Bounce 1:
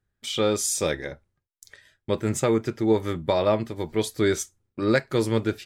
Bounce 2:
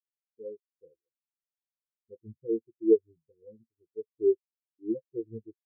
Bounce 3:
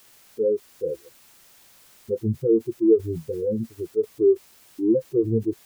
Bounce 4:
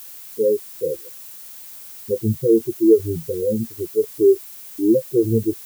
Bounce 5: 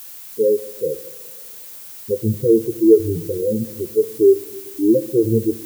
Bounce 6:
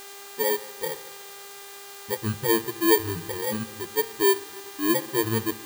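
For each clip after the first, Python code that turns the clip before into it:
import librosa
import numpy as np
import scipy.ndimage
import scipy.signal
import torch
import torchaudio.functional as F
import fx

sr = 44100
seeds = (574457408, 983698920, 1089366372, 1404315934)

y1 = scipy.signal.sosfilt(scipy.signal.cheby1(10, 1.0, 520.0, 'lowpass', fs=sr, output='sos'), x)
y1 = fx.spectral_expand(y1, sr, expansion=4.0)
y1 = y1 * 10.0 ** (2.0 / 20.0)
y2 = fx.env_flatten(y1, sr, amount_pct=70)
y2 = y2 * 10.0 ** (2.5 / 20.0)
y3 = fx.dmg_noise_colour(y2, sr, seeds[0], colour='violet', level_db=-43.0)
y3 = y3 * 10.0 ** (4.0 / 20.0)
y4 = fx.room_shoebox(y3, sr, seeds[1], volume_m3=2000.0, walls='mixed', distance_m=0.32)
y4 = y4 * 10.0 ** (1.5 / 20.0)
y5 = fx.bit_reversed(y4, sr, seeds[2], block=32)
y5 = fx.dmg_buzz(y5, sr, base_hz=400.0, harmonics=22, level_db=-37.0, tilt_db=-3, odd_only=False)
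y5 = y5 * 10.0 ** (-8.5 / 20.0)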